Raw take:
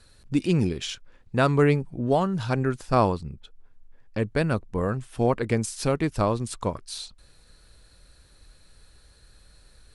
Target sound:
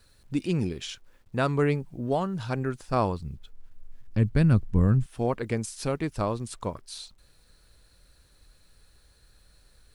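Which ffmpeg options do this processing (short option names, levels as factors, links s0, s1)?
-filter_complex "[0:a]acrusher=bits=10:mix=0:aa=0.000001,asettb=1/sr,asplit=3[s0][s1][s2];[s0]atrim=end=2.994[s3];[s1]atrim=start=2.99:end=5.06,asetpts=PTS-STARTPTS,afade=t=in:d=0.004:c=qsin,afade=t=out:st=2.066:d=0.004:c=qsin,asubboost=boost=10.5:cutoff=230[s4];[s2]atrim=start=5.056[s5];[s3][s4]acrossfade=d=0.004:c1=hsin:c2=qsin[s6];[s6][s5]acrossfade=d=0.004:c1=qsin:c2=hsin,volume=0.596"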